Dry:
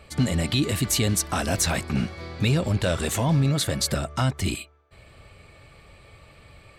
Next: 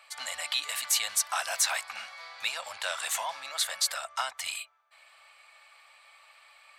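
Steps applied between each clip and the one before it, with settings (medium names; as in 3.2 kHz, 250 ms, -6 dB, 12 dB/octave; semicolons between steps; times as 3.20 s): inverse Chebyshev high-pass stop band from 390 Hz, stop band 40 dB; trim -1.5 dB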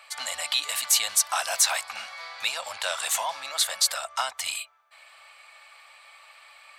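dynamic bell 1.8 kHz, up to -4 dB, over -43 dBFS, Q 1.2; trim +5.5 dB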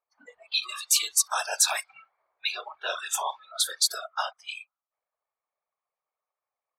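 whisper effect; spectral noise reduction 26 dB; level-controlled noise filter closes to 640 Hz, open at -22.5 dBFS; trim -1 dB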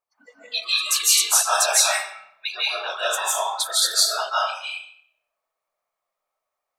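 reverberation RT60 0.65 s, pre-delay 120 ms, DRR -7 dB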